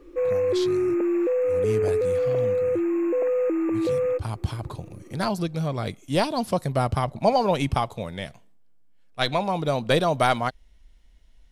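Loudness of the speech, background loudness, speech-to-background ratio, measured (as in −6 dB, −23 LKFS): −26.5 LKFS, −23.5 LKFS, −3.0 dB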